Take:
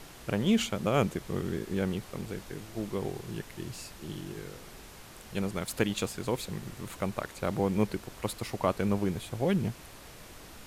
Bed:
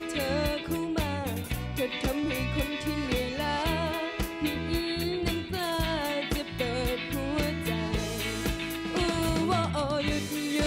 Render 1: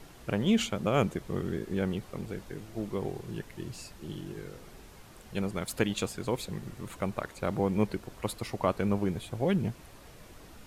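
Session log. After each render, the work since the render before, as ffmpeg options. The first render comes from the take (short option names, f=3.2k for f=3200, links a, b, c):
-af "afftdn=nr=6:nf=-49"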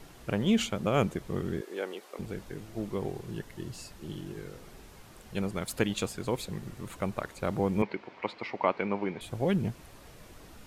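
-filter_complex "[0:a]asettb=1/sr,asplit=3[a][b][c];[a]atrim=end=1.614[d];[b]atrim=start=1.61:end=2.19,asetpts=PTS-STARTPTS,afade=t=in:d=0.004:c=qsin,afade=t=out:st=0.576:d=0.004:c=qsin,highpass=f=360:w=0.5412,highpass=f=360:w=1.3066[e];[c]atrim=start=2.186[f];[d][e]acrossfade=d=0.004:c1=hsin:c2=qsin[g];[g][f]acrossfade=d=0.004:c1=qsin:c2=hsin,asettb=1/sr,asplit=3[h][i][j];[h]atrim=end=3.344[k];[i]atrim=start=3.34:end=3.9,asetpts=PTS-STARTPTS,afade=t=in:d=0.004:c=qsin,afade=t=out:st=0.556:d=0.004:c=qsin,bandreject=f=2.4k:w=10[l];[j]atrim=start=3.896[m];[k][l]acrossfade=d=0.004:c1=hsin:c2=qsin[n];[n][m]acrossfade=d=0.004:c1=qsin:c2=hsin,asettb=1/sr,asplit=3[o][p][q];[o]atrim=end=7.824[r];[p]atrim=start=7.82:end=9.21,asetpts=PTS-STARTPTS,afade=t=in:d=0.004:c=qsin,afade=t=out:st=1.386:d=0.004:c=qsin,highpass=250,equalizer=f=910:t=q:w=4:g=6,equalizer=f=2.2k:t=q:w=4:g=9,equalizer=f=3.7k:t=q:w=4:g=-3,lowpass=f=4.3k:w=0.5412,lowpass=f=4.3k:w=1.3066[s];[q]atrim=start=9.206[t];[r][s]acrossfade=d=0.004:c1=hsin:c2=qsin[u];[u][t]acrossfade=d=0.004:c1=qsin:c2=hsin"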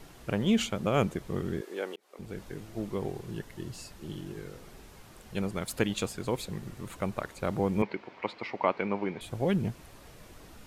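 -filter_complex "[0:a]asplit=2[a][b];[a]atrim=end=1.96,asetpts=PTS-STARTPTS,afade=t=out:st=1.956:d=0.004:c=hsin[c];[b]atrim=start=1.96,asetpts=PTS-STARTPTS,afade=t=in:d=0.47[d];[c][d]concat=n=2:v=0:a=1"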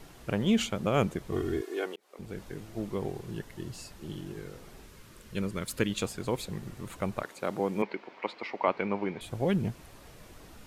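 -filter_complex "[0:a]asettb=1/sr,asplit=3[a][b][c];[a]atrim=end=1.324[d];[b]atrim=start=1.32:end=1.86,asetpts=PTS-STARTPTS,afade=t=in:d=0.004:c=qsin,afade=t=out:st=0.536:d=0.004:c=qsin,aecho=1:1:2.8:0.87,atrim=end_sample=23814[e];[c]atrim=start=1.856[f];[d][e]acrossfade=d=0.004:c1=hsin:c2=qsin[g];[g][f]acrossfade=d=0.004:c1=qsin:c2=hsin,asettb=1/sr,asplit=3[h][i][j];[h]atrim=end=4.864[k];[i]atrim=start=4.86:end=6.01,asetpts=PTS-STARTPTS,afade=t=in:d=0.004:c=qsin,afade=t=out:st=1.146:d=0.004:c=qsin,equalizer=f=760:t=o:w=0.34:g=-14[l];[j]atrim=start=6.006[m];[k][l]acrossfade=d=0.004:c1=hsin:c2=qsin[n];[n][m]acrossfade=d=0.004:c1=qsin:c2=hsin,asettb=1/sr,asplit=3[o][p][q];[o]atrim=end=7.234[r];[p]atrim=start=7.23:end=8.68,asetpts=PTS-STARTPTS,afade=t=in:d=0.004:c=qsin,afade=t=out:st=1.446:d=0.004:c=qsin,highpass=230[s];[q]atrim=start=8.676[t];[r][s]acrossfade=d=0.004:c1=hsin:c2=qsin[u];[u][t]acrossfade=d=0.004:c1=qsin:c2=hsin"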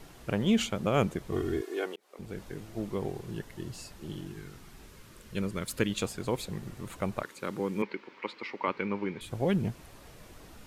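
-filter_complex "[0:a]asettb=1/sr,asplit=3[a][b][c];[a]atrim=end=4.274[d];[b]atrim=start=4.27:end=4.81,asetpts=PTS-STARTPTS,afade=t=in:d=0.004:c=qsin,afade=t=out:st=0.536:d=0.004:c=qsin,equalizer=f=520:w=2.3:g=-14.5[e];[c]atrim=start=4.806[f];[d][e]acrossfade=d=0.004:c1=hsin:c2=qsin[g];[g][f]acrossfade=d=0.004:c1=qsin:c2=hsin,asettb=1/sr,asplit=3[h][i][j];[h]atrim=end=7.234[k];[i]atrim=start=7.23:end=9.31,asetpts=PTS-STARTPTS,afade=t=in:d=0.004:c=qsin,afade=t=out:st=2.076:d=0.004:c=qsin,equalizer=f=690:t=o:w=0.44:g=-15[l];[j]atrim=start=9.306[m];[k][l]acrossfade=d=0.004:c1=hsin:c2=qsin[n];[n][m]acrossfade=d=0.004:c1=qsin:c2=hsin"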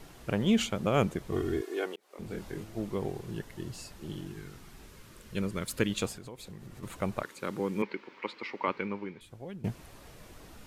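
-filter_complex "[0:a]asettb=1/sr,asplit=3[a][b][c];[a]atrim=end=2.084[d];[b]atrim=start=2.08:end=2.64,asetpts=PTS-STARTPTS,afade=t=in:d=0.004:c=qsin,afade=t=out:st=0.556:d=0.004:c=qsin,asplit=2[e][f];[f]adelay=25,volume=-3dB[g];[e][g]amix=inputs=2:normalize=0,atrim=end_sample=24696[h];[c]atrim=start=2.636[i];[d][h]acrossfade=d=0.004:c1=hsin:c2=qsin[j];[j][i]acrossfade=d=0.004:c1=qsin:c2=hsin,asettb=1/sr,asplit=3[k][l][m];[k]atrim=end=6.134[n];[l]atrim=start=6.13:end=6.83,asetpts=PTS-STARTPTS,afade=t=in:d=0.004:c=qsin,afade=t=out:st=0.696:d=0.004:c=qsin,acompressor=threshold=-43dB:ratio=4:attack=3.2:release=140:knee=1:detection=peak[o];[m]atrim=start=6.826[p];[n][o]acrossfade=d=0.004:c1=hsin:c2=qsin[q];[q][p]acrossfade=d=0.004:c1=qsin:c2=hsin,asplit=2[r][s];[r]atrim=end=9.64,asetpts=PTS-STARTPTS,afade=t=out:st=8.73:d=0.91:c=qua:silence=0.149624[t];[s]atrim=start=9.64,asetpts=PTS-STARTPTS,afade=t=in:d=0.004:c=hsin:silence=0.149624[u];[t][u]concat=n=2:v=0:a=1"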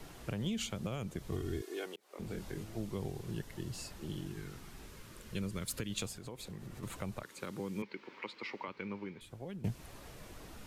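-filter_complex "[0:a]alimiter=limit=-22dB:level=0:latency=1:release=239,acrossover=split=170|3000[a][b][c];[b]acompressor=threshold=-43dB:ratio=2.5[d];[a][d][c]amix=inputs=3:normalize=0"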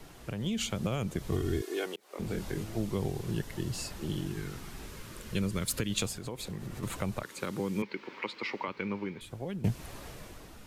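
-af "dynaudnorm=f=100:g=11:m=7dB"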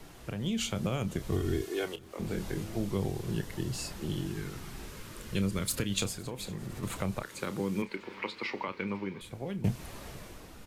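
-filter_complex "[0:a]asplit=2[a][b];[b]adelay=31,volume=-12dB[c];[a][c]amix=inputs=2:normalize=0,aecho=1:1:507|1014|1521|2028:0.0631|0.0379|0.0227|0.0136"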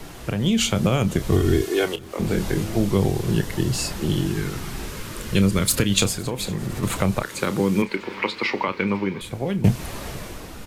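-af "volume=12dB"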